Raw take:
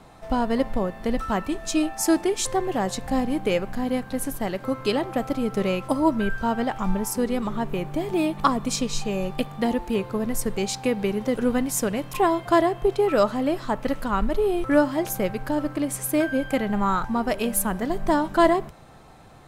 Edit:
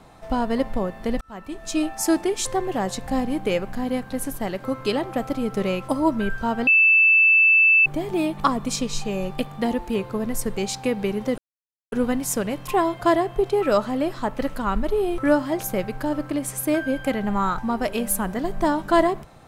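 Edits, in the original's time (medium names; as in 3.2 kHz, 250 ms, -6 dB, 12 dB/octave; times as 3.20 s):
1.21–1.83 s: fade in
6.67–7.86 s: bleep 2.64 kHz -12 dBFS
11.38 s: insert silence 0.54 s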